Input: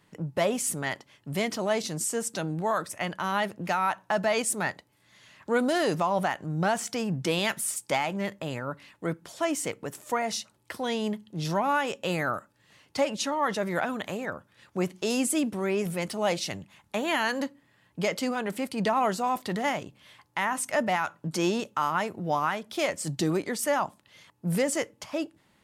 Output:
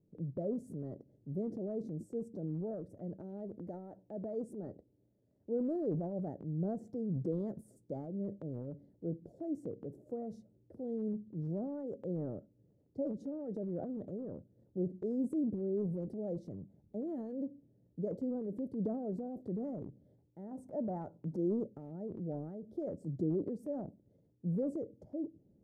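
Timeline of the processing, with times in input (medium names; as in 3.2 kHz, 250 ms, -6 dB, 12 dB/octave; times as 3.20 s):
3.16–5.76 s: peaking EQ 150 Hz -7 dB
20.51–21.36 s: peaking EQ 990 Hz +13 dB
whole clip: inverse Chebyshev low-pass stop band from 1 kHz, stop band 40 dB; transient shaper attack 0 dB, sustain +8 dB; trim -6.5 dB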